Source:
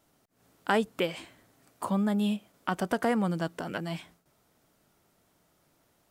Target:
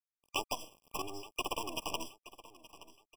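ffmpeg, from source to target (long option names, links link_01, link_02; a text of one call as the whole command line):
ffmpeg -i in.wav -filter_complex "[0:a]adynamicequalizer=threshold=0.00708:dfrequency=280:dqfactor=1.8:tfrequency=280:tqfactor=1.8:attack=5:release=100:ratio=0.375:range=2:mode=boostabove:tftype=bell,acompressor=threshold=-29dB:ratio=12,asplit=2[link_01][link_02];[link_02]asetrate=33038,aresample=44100,atempo=1.33484,volume=-3dB[link_03];[link_01][link_03]amix=inputs=2:normalize=0,acrossover=split=470[link_04][link_05];[link_04]acompressor=threshold=-49dB:ratio=3[link_06];[link_06][link_05]amix=inputs=2:normalize=0,acrusher=bits=6:dc=4:mix=0:aa=0.000001,tremolo=f=160:d=0.462,asetrate=85113,aresample=44100,asuperstop=centerf=3800:order=4:qfactor=4.6,aecho=1:1:873|1746|2619:0.133|0.0547|0.0224,afftfilt=real='re*eq(mod(floor(b*sr/1024/1200),2),0)':imag='im*eq(mod(floor(b*sr/1024/1200),2),0)':win_size=1024:overlap=0.75,volume=5dB" out.wav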